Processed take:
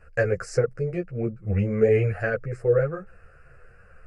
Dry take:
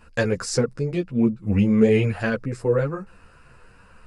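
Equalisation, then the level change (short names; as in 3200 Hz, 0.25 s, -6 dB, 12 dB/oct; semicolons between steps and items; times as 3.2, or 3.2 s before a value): LPF 2300 Hz 6 dB/oct; fixed phaser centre 960 Hz, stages 6; +1.5 dB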